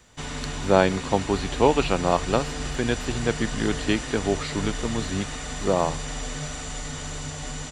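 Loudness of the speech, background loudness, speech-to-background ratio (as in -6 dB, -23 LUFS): -25.5 LUFS, -32.0 LUFS, 6.5 dB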